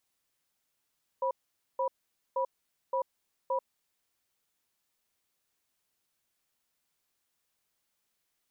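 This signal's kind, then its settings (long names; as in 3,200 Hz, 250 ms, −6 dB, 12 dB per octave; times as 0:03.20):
tone pair in a cadence 532 Hz, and 978 Hz, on 0.09 s, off 0.48 s, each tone −29.5 dBFS 2.45 s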